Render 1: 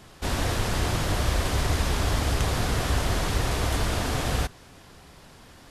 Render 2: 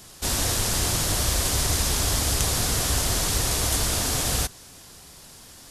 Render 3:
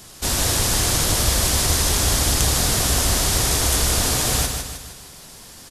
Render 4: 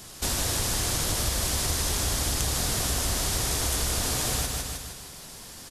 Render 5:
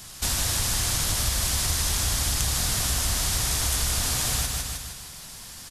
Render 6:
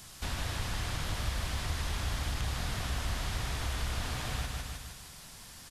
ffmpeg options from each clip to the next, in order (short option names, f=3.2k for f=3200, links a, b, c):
-af "bass=f=250:g=0,treble=f=4k:g=15,volume=-1.5dB"
-af "aecho=1:1:154|308|462|616|770|924:0.501|0.241|0.115|0.0554|0.0266|0.0128,volume=3.5dB"
-af "acompressor=threshold=-25dB:ratio=2.5,volume=-1.5dB"
-af "equalizer=f=400:w=0.8:g=-9,volume=2.5dB"
-filter_complex "[0:a]acrossover=split=3500[a][b];[b]acompressor=threshold=-43dB:ratio=4:attack=1:release=60[c];[a][c]amix=inputs=2:normalize=0,volume=-5.5dB"